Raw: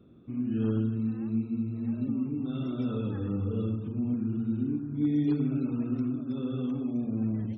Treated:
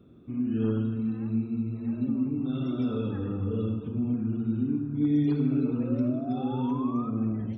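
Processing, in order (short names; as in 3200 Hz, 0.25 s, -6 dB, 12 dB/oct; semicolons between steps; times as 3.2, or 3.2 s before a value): painted sound rise, 5.56–7.1, 410–1300 Hz -42 dBFS; non-linear reverb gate 0.45 s falling, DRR 8 dB; gain +1.5 dB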